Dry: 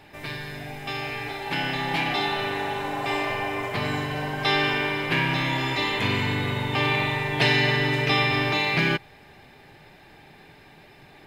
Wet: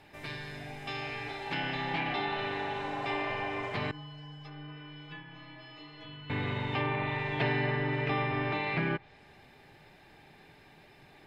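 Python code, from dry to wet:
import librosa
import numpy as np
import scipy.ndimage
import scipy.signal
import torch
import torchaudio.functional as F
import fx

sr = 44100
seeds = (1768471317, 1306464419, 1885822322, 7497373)

y = fx.env_lowpass_down(x, sr, base_hz=1700.0, full_db=-19.0)
y = fx.stiff_resonator(y, sr, f0_hz=150.0, decay_s=0.53, stiffness=0.008, at=(3.91, 6.3))
y = y * 10.0 ** (-6.5 / 20.0)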